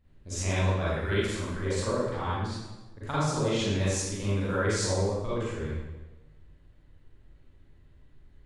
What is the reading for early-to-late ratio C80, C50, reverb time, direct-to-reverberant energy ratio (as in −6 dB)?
0.0 dB, −4.5 dB, 1.2 s, −10.0 dB